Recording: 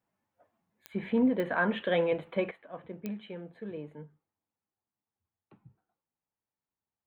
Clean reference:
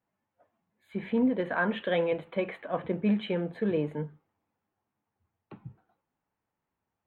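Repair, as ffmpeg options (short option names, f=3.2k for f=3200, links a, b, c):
-af "adeclick=t=4,asetnsamples=n=441:p=0,asendcmd='2.51 volume volume 12dB',volume=0dB"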